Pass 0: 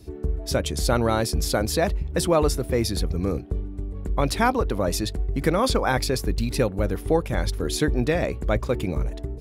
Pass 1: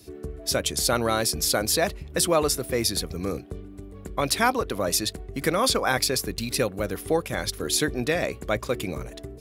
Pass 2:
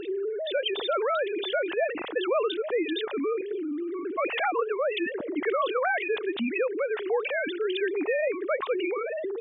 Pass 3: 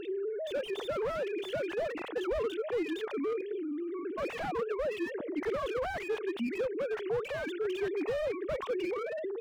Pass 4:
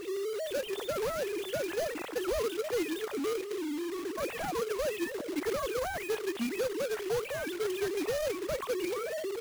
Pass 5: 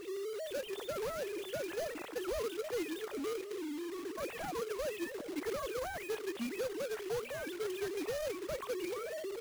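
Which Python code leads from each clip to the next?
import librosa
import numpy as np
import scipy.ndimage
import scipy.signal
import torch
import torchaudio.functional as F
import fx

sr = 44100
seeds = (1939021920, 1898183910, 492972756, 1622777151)

y1 = scipy.signal.sosfilt(scipy.signal.butter(2, 63.0, 'highpass', fs=sr, output='sos'), x)
y1 = fx.tilt_eq(y1, sr, slope=2.0)
y1 = fx.notch(y1, sr, hz=880.0, q=12.0)
y2 = fx.sine_speech(y1, sr)
y2 = fx.env_flatten(y2, sr, amount_pct=70)
y2 = y2 * 10.0 ** (-8.0 / 20.0)
y3 = fx.slew_limit(y2, sr, full_power_hz=34.0)
y3 = y3 * 10.0 ** (-4.5 / 20.0)
y4 = fx.quant_companded(y3, sr, bits=4)
y5 = y4 + 10.0 ** (-22.0 / 20.0) * np.pad(y4, (int(820 * sr / 1000.0), 0))[:len(y4)]
y5 = y5 * 10.0 ** (-5.5 / 20.0)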